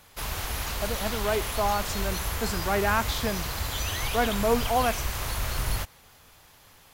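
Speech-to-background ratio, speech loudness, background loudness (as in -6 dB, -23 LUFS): 2.0 dB, -29.0 LUFS, -31.0 LUFS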